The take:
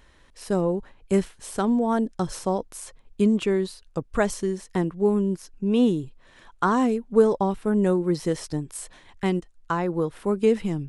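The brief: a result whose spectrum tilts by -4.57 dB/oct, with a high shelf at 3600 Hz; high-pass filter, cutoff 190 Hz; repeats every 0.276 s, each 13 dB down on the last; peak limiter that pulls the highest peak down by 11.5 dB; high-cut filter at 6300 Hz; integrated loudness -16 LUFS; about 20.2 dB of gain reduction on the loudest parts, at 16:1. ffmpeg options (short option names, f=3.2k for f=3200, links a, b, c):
-af "highpass=190,lowpass=6.3k,highshelf=f=3.6k:g=7,acompressor=threshold=-32dB:ratio=16,alimiter=level_in=5dB:limit=-24dB:level=0:latency=1,volume=-5dB,aecho=1:1:276|552|828:0.224|0.0493|0.0108,volume=23.5dB"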